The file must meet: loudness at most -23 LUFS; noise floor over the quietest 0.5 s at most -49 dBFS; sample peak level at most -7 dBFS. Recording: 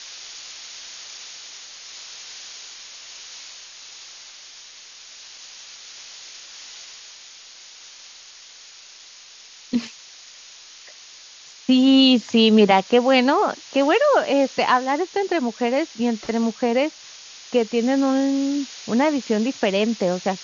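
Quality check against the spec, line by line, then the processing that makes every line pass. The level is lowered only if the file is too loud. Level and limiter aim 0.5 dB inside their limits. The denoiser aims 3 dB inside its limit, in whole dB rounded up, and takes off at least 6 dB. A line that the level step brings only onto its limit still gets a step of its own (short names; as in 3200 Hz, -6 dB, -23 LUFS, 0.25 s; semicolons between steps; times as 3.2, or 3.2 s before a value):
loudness -19.5 LUFS: fail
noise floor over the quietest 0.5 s -45 dBFS: fail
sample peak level -3.5 dBFS: fail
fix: denoiser 6 dB, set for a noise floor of -45 dBFS; gain -4 dB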